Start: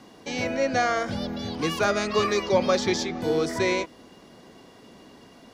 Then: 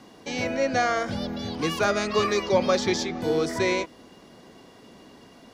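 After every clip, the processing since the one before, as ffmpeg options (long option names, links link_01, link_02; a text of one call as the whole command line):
ffmpeg -i in.wav -af anull out.wav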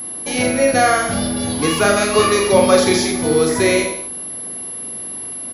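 ffmpeg -i in.wav -af "aecho=1:1:40|84|132.4|185.6|244.2:0.631|0.398|0.251|0.158|0.1,aeval=exprs='val(0)+0.0224*sin(2*PI*11000*n/s)':channel_layout=same,volume=7dB" out.wav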